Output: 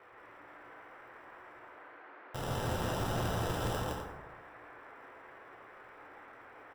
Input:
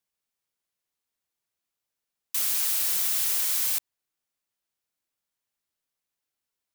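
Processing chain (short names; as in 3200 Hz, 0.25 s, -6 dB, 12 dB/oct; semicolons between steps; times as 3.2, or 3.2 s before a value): median filter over 41 samples; graphic EQ 125/250/1000/2000/4000/8000 Hz +9/-11/+8/-12/+8/+6 dB; reverse; upward compressor, threshold -58 dBFS; reverse; sample-and-hold 20×; band noise 300–1900 Hz -62 dBFS; loudspeakers at several distances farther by 56 m -2 dB, 87 m -10 dB; plate-style reverb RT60 1.3 s, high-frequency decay 0.4×, DRR 1 dB; gain +3.5 dB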